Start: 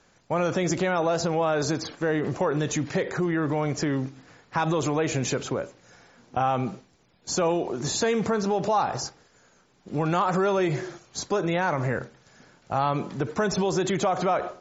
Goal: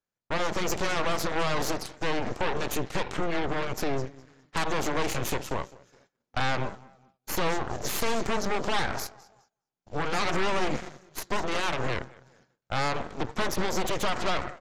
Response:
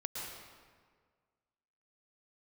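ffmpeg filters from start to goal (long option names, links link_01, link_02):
-af "aecho=1:1:206|412|618|824:0.15|0.0643|0.0277|0.0119,agate=range=-21dB:threshold=-49dB:ratio=16:detection=peak,aeval=exprs='0.282*(cos(1*acos(clip(val(0)/0.282,-1,1)))-cos(1*PI/2))+0.0355*(cos(3*acos(clip(val(0)/0.282,-1,1)))-cos(3*PI/2))+0.1*(cos(8*acos(clip(val(0)/0.282,-1,1)))-cos(8*PI/2))':channel_layout=same,volume=-6.5dB"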